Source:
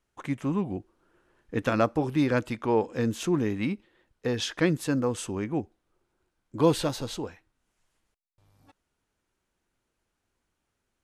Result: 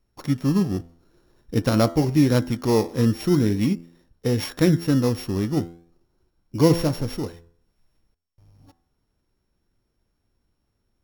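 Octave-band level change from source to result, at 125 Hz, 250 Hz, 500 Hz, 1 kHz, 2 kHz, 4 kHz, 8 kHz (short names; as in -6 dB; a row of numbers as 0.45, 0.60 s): +9.5, +7.0, +4.0, +0.5, -0.5, +3.5, +3.0 dB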